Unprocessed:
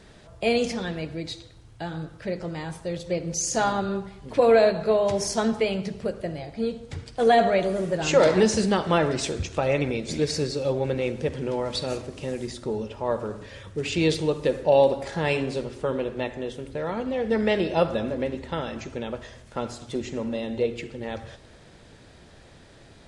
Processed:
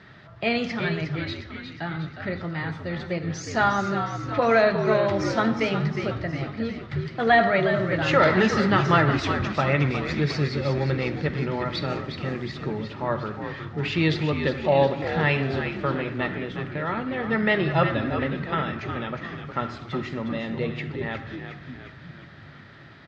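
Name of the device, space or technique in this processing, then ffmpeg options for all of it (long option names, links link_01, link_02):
frequency-shifting delay pedal into a guitar cabinet: -filter_complex "[0:a]asplit=8[link_01][link_02][link_03][link_04][link_05][link_06][link_07][link_08];[link_02]adelay=360,afreqshift=-76,volume=-8dB[link_09];[link_03]adelay=720,afreqshift=-152,volume=-12.9dB[link_10];[link_04]adelay=1080,afreqshift=-228,volume=-17.8dB[link_11];[link_05]adelay=1440,afreqshift=-304,volume=-22.6dB[link_12];[link_06]adelay=1800,afreqshift=-380,volume=-27.5dB[link_13];[link_07]adelay=2160,afreqshift=-456,volume=-32.4dB[link_14];[link_08]adelay=2520,afreqshift=-532,volume=-37.3dB[link_15];[link_01][link_09][link_10][link_11][link_12][link_13][link_14][link_15]amix=inputs=8:normalize=0,highpass=97,equalizer=frequency=100:width_type=q:width=4:gain=5,equalizer=frequency=140:width_type=q:width=4:gain=8,equalizer=frequency=480:width_type=q:width=4:gain=-7,equalizer=frequency=1300:width_type=q:width=4:gain=9,equalizer=frequency=1900:width_type=q:width=4:gain=9,lowpass=frequency=4500:width=0.5412,lowpass=frequency=4500:width=1.3066"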